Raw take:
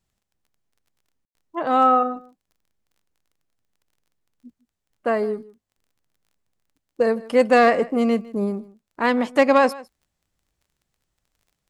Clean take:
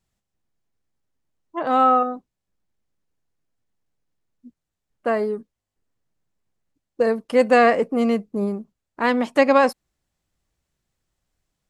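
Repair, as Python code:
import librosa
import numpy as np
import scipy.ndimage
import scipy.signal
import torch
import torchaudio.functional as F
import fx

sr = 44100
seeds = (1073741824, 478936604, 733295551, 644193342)

y = fx.fix_declip(x, sr, threshold_db=-7.0)
y = fx.fix_declick_ar(y, sr, threshold=6.5)
y = fx.fix_ambience(y, sr, seeds[0], print_start_s=4.51, print_end_s=5.01, start_s=1.25, end_s=1.35)
y = fx.fix_echo_inverse(y, sr, delay_ms=155, level_db=-20.5)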